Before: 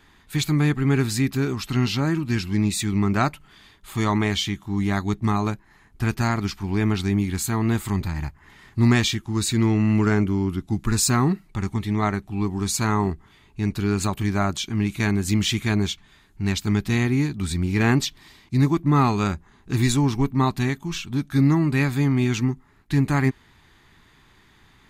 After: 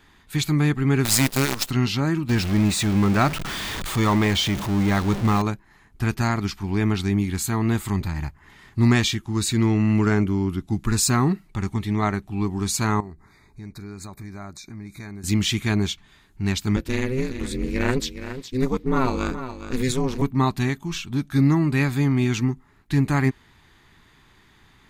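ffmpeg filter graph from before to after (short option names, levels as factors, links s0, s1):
-filter_complex "[0:a]asettb=1/sr,asplit=3[s0][s1][s2];[s0]atrim=end=1.054[s3];[s1]atrim=start=1.05:end=1.71,asetpts=PTS-STARTPTS,afade=t=in:d=0.004:c=qsin,afade=t=out:st=0.656:d=0.004:c=qsin,highshelf=f=3300:g=12,acrusher=bits=4:dc=4:mix=0:aa=0.000001[s4];[s2]atrim=start=1.706[s5];[s3][s4]acrossfade=d=0.004:c1=hsin:c2=qsin[s6];[s6][s5]acrossfade=d=0.004:c1=qsin:c2=hsin,asettb=1/sr,asplit=3[s7][s8][s9];[s7]atrim=end=2.294[s10];[s8]atrim=start=2.29:end=5.42,asetpts=PTS-STARTPTS,afade=t=in:d=0.004:c=qsin,afade=t=out:st=3.126:d=0.004:c=qsin,aeval=exprs='val(0)+0.5*0.0668*sgn(val(0))':c=same,equalizer=f=13000:t=o:w=1.3:g=-5.5[s11];[s9]atrim=start=5.416[s12];[s10][s11]acrossfade=d=0.004:c1=hsin:c2=qsin[s13];[s13][s12]acrossfade=d=0.004:c1=qsin:c2=hsin,asettb=1/sr,asplit=3[s14][s15][s16];[s14]atrim=end=13.004[s17];[s15]atrim=start=13:end=15.24,asetpts=PTS-STARTPTS,afade=t=in:d=0.004:c=qsin,afade=t=out:st=2.236:d=0.004:c=qsin,acompressor=threshold=0.01:ratio=2.5:attack=3.2:release=140:knee=1:detection=peak,asuperstop=centerf=3000:order=20:qfactor=2.6[s18];[s16]atrim=start=15.236[s19];[s17][s18]acrossfade=d=0.004:c1=hsin:c2=qsin[s20];[s20][s19]acrossfade=d=0.004:c1=qsin:c2=hsin,asettb=1/sr,asplit=3[s21][s22][s23];[s21]atrim=end=16.764[s24];[s22]atrim=start=16.76:end=20.22,asetpts=PTS-STARTPTS,afade=t=in:d=0.004:c=qsin,afade=t=out:st=3.456:d=0.004:c=qsin,aeval=exprs='val(0)*sin(2*PI*130*n/s)':c=same,aecho=1:1:416:0.282,atrim=end_sample=152586[s25];[s23]atrim=start=20.216[s26];[s24][s25]acrossfade=d=0.004:c1=hsin:c2=qsin[s27];[s27][s26]acrossfade=d=0.004:c1=qsin:c2=hsin"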